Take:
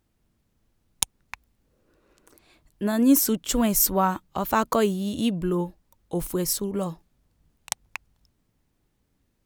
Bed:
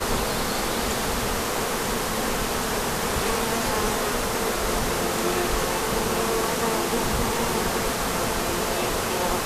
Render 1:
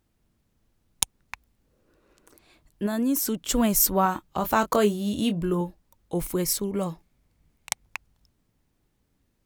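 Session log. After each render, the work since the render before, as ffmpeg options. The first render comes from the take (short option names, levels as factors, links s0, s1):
-filter_complex "[0:a]asettb=1/sr,asplit=3[s0][s1][s2];[s0]atrim=end=2.864[s3];[s1]atrim=start=2.86:end=3.5,asetpts=PTS-STARTPTS,afade=t=in:d=0.004:c=qsin,afade=t=out:st=0.636:d=0.004:c=qsin,acompressor=threshold=0.0631:ratio=2.5:attack=3.2:release=140:knee=1:detection=peak[s4];[s2]atrim=start=3.496[s5];[s3][s4]acrossfade=d=0.004:c1=hsin:c2=qsin[s6];[s6][s5]acrossfade=d=0.004:c1=qsin:c2=hsin,asettb=1/sr,asplit=3[s7][s8][s9];[s7]atrim=end=4.034[s10];[s8]atrim=start=4.03:end=5.61,asetpts=PTS-STARTPTS,afade=t=in:d=0.004:c=qsin,afade=t=out:st=1.576:d=0.004:c=qsin,asplit=2[s11][s12];[s12]adelay=24,volume=0.355[s13];[s11][s13]amix=inputs=2:normalize=0,atrim=end_sample=69678[s14];[s9]atrim=start=5.606[s15];[s10][s14]acrossfade=d=0.004:c1=hsin:c2=qsin[s16];[s16][s15]acrossfade=d=0.004:c1=qsin:c2=hsin,asettb=1/sr,asplit=3[s17][s18][s19];[s17]atrim=end=6.144[s20];[s18]atrim=start=6.14:end=7.84,asetpts=PTS-STARTPTS,afade=t=in:d=0.004:c=qsin,afade=t=out:st=1.696:d=0.004:c=qsin,equalizer=f=2200:w=6.2:g=7.5[s21];[s19]atrim=start=7.836[s22];[s20][s21]acrossfade=d=0.004:c1=hsin:c2=qsin[s23];[s23][s22]acrossfade=d=0.004:c1=qsin:c2=hsin"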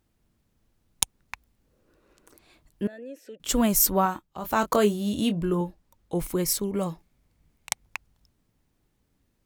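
-filter_complex "[0:a]asettb=1/sr,asplit=3[s0][s1][s2];[s0]atrim=end=2.874[s3];[s1]atrim=start=2.87:end=3.4,asetpts=PTS-STARTPTS,afade=t=in:d=0.004:c=qsin,afade=t=out:st=0.526:d=0.004:c=qsin,asplit=3[s4][s5][s6];[s4]bandpass=f=530:t=q:w=8,volume=1[s7];[s5]bandpass=f=1840:t=q:w=8,volume=0.501[s8];[s6]bandpass=f=2480:t=q:w=8,volume=0.355[s9];[s7][s8][s9]amix=inputs=3:normalize=0[s10];[s2]atrim=start=3.396[s11];[s3][s10]acrossfade=d=0.004:c1=hsin:c2=qsin[s12];[s12][s11]acrossfade=d=0.004:c1=qsin:c2=hsin,asettb=1/sr,asplit=3[s13][s14][s15];[s13]atrim=end=5.294[s16];[s14]atrim=start=5.29:end=6.46,asetpts=PTS-STARTPTS,afade=t=in:d=0.004:c=qsin,afade=t=out:st=1.166:d=0.004:c=qsin,highshelf=f=7600:g=-4[s17];[s15]atrim=start=6.456[s18];[s16][s17]acrossfade=d=0.004:c1=hsin:c2=qsin[s19];[s19][s18]acrossfade=d=0.004:c1=qsin:c2=hsin,asplit=3[s20][s21][s22];[s20]atrim=end=4.26,asetpts=PTS-STARTPTS,afade=t=out:st=3.99:d=0.27:silence=0.316228[s23];[s21]atrim=start=4.26:end=4.38,asetpts=PTS-STARTPTS,volume=0.316[s24];[s22]atrim=start=4.38,asetpts=PTS-STARTPTS,afade=t=in:d=0.27:silence=0.316228[s25];[s23][s24][s25]concat=n=3:v=0:a=1"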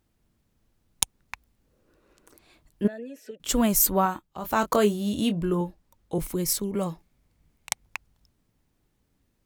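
-filter_complex "[0:a]asettb=1/sr,asplit=3[s0][s1][s2];[s0]atrim=end=2.844[s3];[s1]atrim=start=2.84:end=3.31,asetpts=PTS-STARTPTS,afade=t=in:d=0.004:c=qsin,afade=t=out:st=0.466:d=0.004:c=qsin,aecho=1:1:4.7:0.93,atrim=end_sample=20727[s4];[s2]atrim=start=3.306[s5];[s3][s4]acrossfade=d=0.004:c1=hsin:c2=qsin[s6];[s6][s5]acrossfade=d=0.004:c1=qsin:c2=hsin,asettb=1/sr,asplit=3[s7][s8][s9];[s7]atrim=end=3.824[s10];[s8]atrim=start=3.82:end=4.24,asetpts=PTS-STARTPTS,afade=t=in:d=0.004:c=qsin,afade=t=out:st=0.416:d=0.004:c=qsin,asuperstop=centerf=5500:order=4:qfactor=7.1[s11];[s9]atrim=start=4.236[s12];[s10][s11]acrossfade=d=0.004:c1=hsin:c2=qsin[s13];[s13][s12]acrossfade=d=0.004:c1=qsin:c2=hsin,asettb=1/sr,asplit=3[s14][s15][s16];[s14]atrim=end=6.184[s17];[s15]atrim=start=6.18:end=6.75,asetpts=PTS-STARTPTS,afade=t=in:d=0.004:c=qsin,afade=t=out:st=0.566:d=0.004:c=qsin,acrossover=split=400|3000[s18][s19][s20];[s19]acompressor=threshold=0.0112:ratio=6:attack=3.2:release=140:knee=2.83:detection=peak[s21];[s18][s21][s20]amix=inputs=3:normalize=0[s22];[s16]atrim=start=6.746[s23];[s17][s22]acrossfade=d=0.004:c1=hsin:c2=qsin[s24];[s24][s23]acrossfade=d=0.004:c1=qsin:c2=hsin"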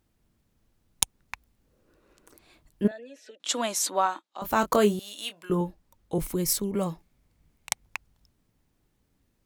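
-filter_complex "[0:a]asettb=1/sr,asplit=3[s0][s1][s2];[s0]atrim=end=2.914[s3];[s1]atrim=start=2.91:end=4.42,asetpts=PTS-STARTPTS,afade=t=in:d=0.004:c=qsin,afade=t=out:st=1.506:d=0.004:c=qsin,highpass=f=330:w=0.5412,highpass=f=330:w=1.3066,equalizer=f=420:t=q:w=4:g=-10,equalizer=f=3800:t=q:w=4:g=7,equalizer=f=8400:t=q:w=4:g=-4,lowpass=f=9200:w=0.5412,lowpass=f=9200:w=1.3066[s4];[s2]atrim=start=4.416[s5];[s3][s4]acrossfade=d=0.004:c1=hsin:c2=qsin[s6];[s6][s5]acrossfade=d=0.004:c1=qsin:c2=hsin,asettb=1/sr,asplit=3[s7][s8][s9];[s7]atrim=end=4.994[s10];[s8]atrim=start=4.99:end=5.5,asetpts=PTS-STARTPTS,afade=t=in:d=0.004:c=qsin,afade=t=out:st=0.506:d=0.004:c=qsin,highpass=1200[s11];[s9]atrim=start=5.496[s12];[s10][s11]acrossfade=d=0.004:c1=hsin:c2=qsin[s13];[s13][s12]acrossfade=d=0.004:c1=qsin:c2=hsin"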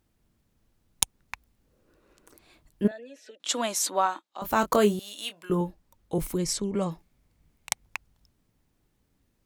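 -filter_complex "[0:a]asplit=3[s0][s1][s2];[s0]afade=t=out:st=6.37:d=0.02[s3];[s1]lowpass=f=8400:w=0.5412,lowpass=f=8400:w=1.3066,afade=t=in:st=6.37:d=0.02,afade=t=out:st=6.9:d=0.02[s4];[s2]afade=t=in:st=6.9:d=0.02[s5];[s3][s4][s5]amix=inputs=3:normalize=0"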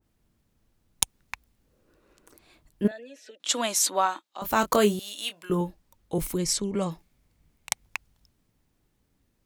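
-af "adynamicequalizer=threshold=0.0112:dfrequency=1700:dqfactor=0.7:tfrequency=1700:tqfactor=0.7:attack=5:release=100:ratio=0.375:range=2:mode=boostabove:tftype=highshelf"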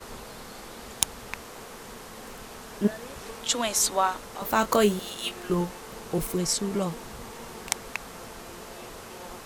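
-filter_complex "[1:a]volume=0.141[s0];[0:a][s0]amix=inputs=2:normalize=0"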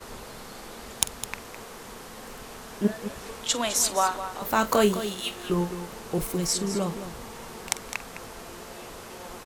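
-af "aecho=1:1:46|209:0.15|0.282"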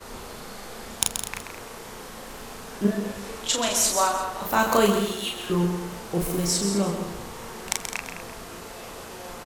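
-filter_complex "[0:a]asplit=2[s0][s1];[s1]adelay=35,volume=0.708[s2];[s0][s2]amix=inputs=2:normalize=0,aecho=1:1:131:0.422"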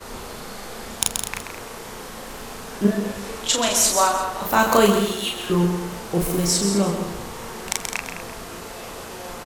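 -af "volume=1.58,alimiter=limit=0.891:level=0:latency=1"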